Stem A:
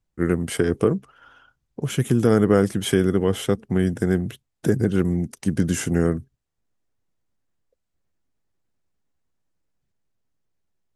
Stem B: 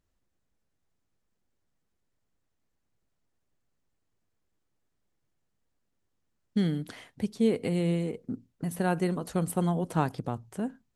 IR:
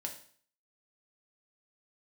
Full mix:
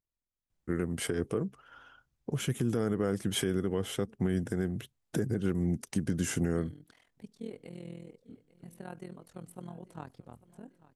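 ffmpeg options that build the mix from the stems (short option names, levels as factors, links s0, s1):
-filter_complex "[0:a]adelay=500,volume=0.668[s0];[1:a]tremolo=f=41:d=0.889,volume=0.211,asplit=2[s1][s2];[s2]volume=0.112,aecho=0:1:845|1690|2535|3380|4225|5070|5915:1|0.48|0.23|0.111|0.0531|0.0255|0.0122[s3];[s0][s1][s3]amix=inputs=3:normalize=0,alimiter=limit=0.106:level=0:latency=1:release=302"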